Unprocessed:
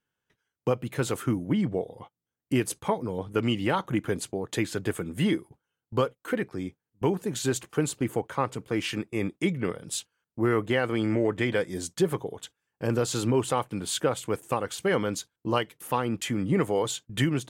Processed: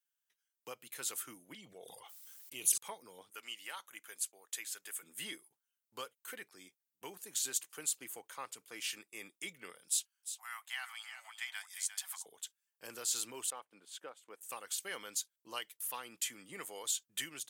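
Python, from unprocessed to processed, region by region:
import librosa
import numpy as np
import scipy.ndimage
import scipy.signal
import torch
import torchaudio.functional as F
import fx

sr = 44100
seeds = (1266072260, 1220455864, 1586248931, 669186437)

y = fx.chain(x, sr, fx.peak_eq(hz=270.0, db=-5.5, octaves=0.75),
    fx.env_flanger(rest_ms=5.8, full_db=-25.0),
    fx.sustainer(db_per_s=36.0), at=(1.54, 2.78))
y = fx.chain(y, sr, fx.highpass(hz=1100.0, slope=6),
    fx.peak_eq(hz=4100.0, db=-4.0, octaves=1.0), at=(3.3, 5.03))
y = fx.chain(y, sr, fx.steep_highpass(hz=720.0, slope=72),
    fx.echo_single(ms=352, db=-10.0), at=(9.88, 12.26))
y = fx.chain(y, sr, fx.lowpass(hz=1000.0, slope=6),
    fx.peak_eq(hz=94.0, db=-14.0, octaves=1.3),
    fx.transient(attack_db=0, sustain_db=-7), at=(13.5, 14.41))
y = scipy.signal.sosfilt(scipy.signal.butter(2, 120.0, 'highpass', fs=sr, output='sos'), y)
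y = np.diff(y, prepend=0.0)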